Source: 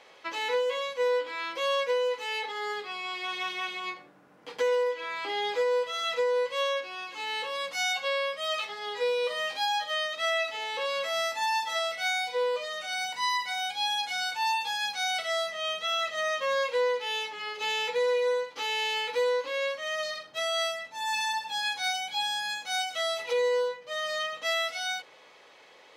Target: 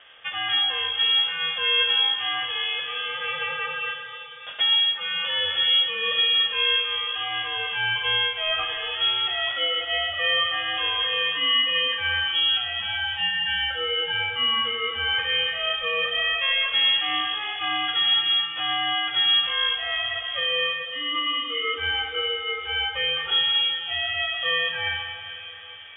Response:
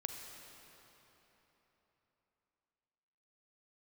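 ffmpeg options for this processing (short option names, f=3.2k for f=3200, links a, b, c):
-filter_complex "[1:a]atrim=start_sample=2205[a];[0:a][a]afir=irnorm=-1:irlink=0,lowpass=f=3.2k:t=q:w=0.5098,lowpass=f=3.2k:t=q:w=0.6013,lowpass=f=3.2k:t=q:w=0.9,lowpass=f=3.2k:t=q:w=2.563,afreqshift=-3800,volume=6.5dB"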